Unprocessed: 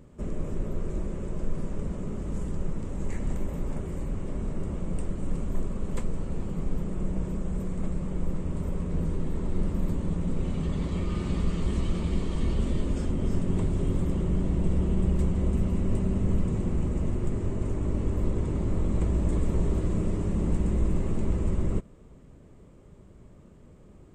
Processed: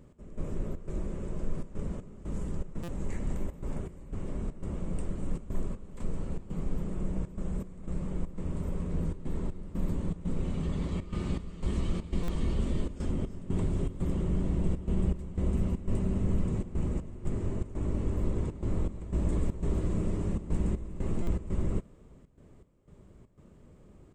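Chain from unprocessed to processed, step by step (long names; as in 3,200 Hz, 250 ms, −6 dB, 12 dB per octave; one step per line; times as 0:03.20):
gate pattern "x..xxx.xxxxxx.x" 120 BPM −12 dB
buffer that repeats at 0:02.83/0:12.23/0:21.22, samples 256, times 8
level −3 dB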